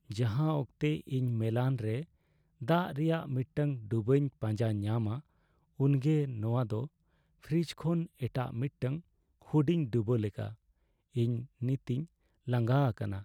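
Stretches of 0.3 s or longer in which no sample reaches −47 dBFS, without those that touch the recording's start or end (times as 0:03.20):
0:02.04–0:02.61
0:05.20–0:05.79
0:06.87–0:07.44
0:09.00–0:09.42
0:10.54–0:11.15
0:12.05–0:12.47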